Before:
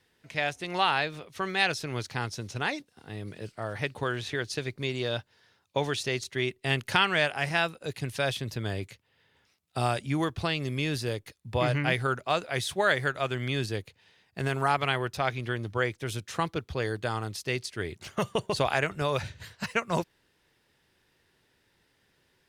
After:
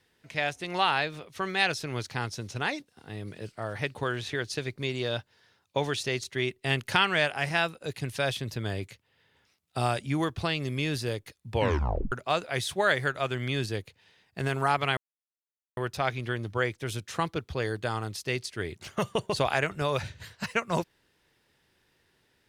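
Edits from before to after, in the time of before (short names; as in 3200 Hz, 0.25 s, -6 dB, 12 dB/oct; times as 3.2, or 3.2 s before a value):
11.53 tape stop 0.59 s
14.97 insert silence 0.80 s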